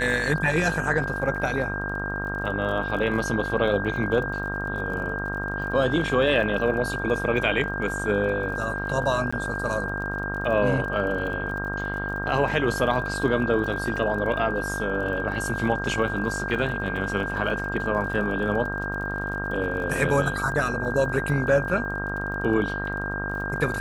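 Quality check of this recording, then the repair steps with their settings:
buzz 50 Hz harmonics 32 -32 dBFS
crackle 39 per s -35 dBFS
whine 1.6 kHz -30 dBFS
9.31–9.32 s: dropout 15 ms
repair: de-click; de-hum 50 Hz, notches 32; band-stop 1.6 kHz, Q 30; interpolate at 9.31 s, 15 ms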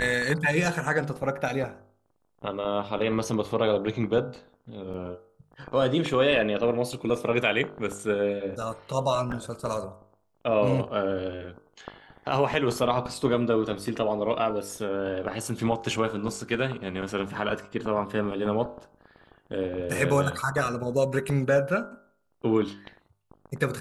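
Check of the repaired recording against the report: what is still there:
nothing left

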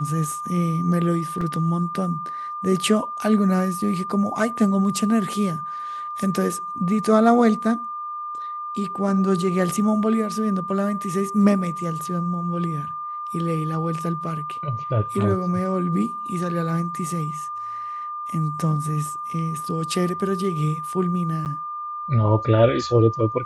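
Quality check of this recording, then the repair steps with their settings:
whine 1.2 kHz -28 dBFS
1.41 s: dropout 3.2 ms
21.45–21.46 s: dropout 8.8 ms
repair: band-stop 1.2 kHz, Q 30; interpolate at 1.41 s, 3.2 ms; interpolate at 21.45 s, 8.8 ms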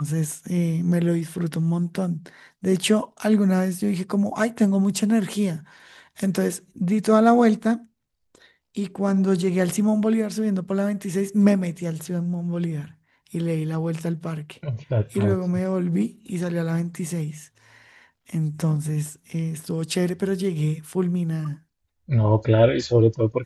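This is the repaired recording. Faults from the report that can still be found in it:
nothing left

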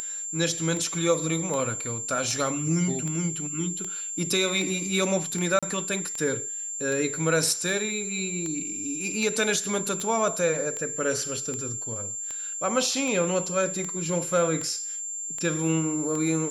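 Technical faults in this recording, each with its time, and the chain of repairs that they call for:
tick 78 rpm -19 dBFS
whine 7.3 kHz -31 dBFS
5.59–5.63 s: dropout 36 ms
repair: de-click; band-stop 7.3 kHz, Q 30; interpolate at 5.59 s, 36 ms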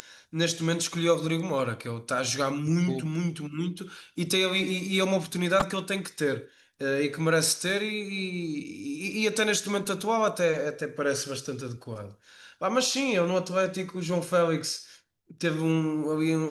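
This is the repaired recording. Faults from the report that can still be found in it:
nothing left

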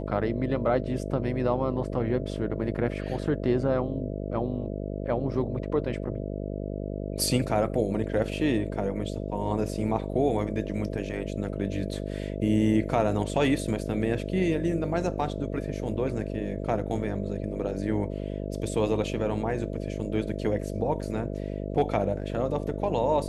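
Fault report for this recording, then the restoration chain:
buzz 50 Hz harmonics 13 -33 dBFS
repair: de-hum 50 Hz, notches 13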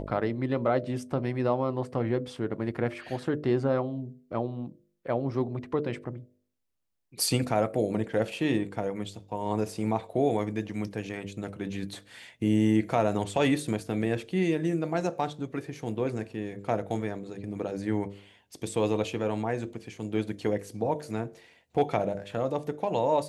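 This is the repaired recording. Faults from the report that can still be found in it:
nothing left

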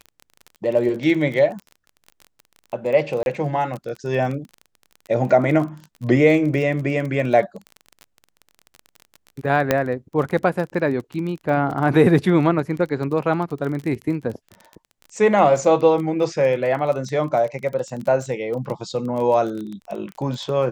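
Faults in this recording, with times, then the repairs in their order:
crackle 25 per s -28 dBFS
3.23–3.26 s: dropout 31 ms
9.71 s: pop -3 dBFS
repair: de-click; interpolate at 3.23 s, 31 ms

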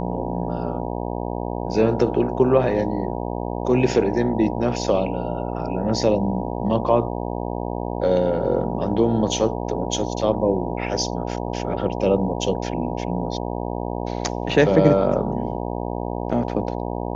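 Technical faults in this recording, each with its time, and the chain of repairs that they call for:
buzz 60 Hz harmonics 16 -27 dBFS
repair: de-hum 60 Hz, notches 16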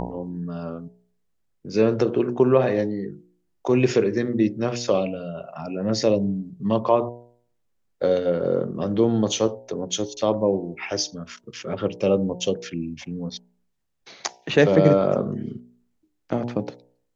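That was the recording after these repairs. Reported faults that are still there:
nothing left

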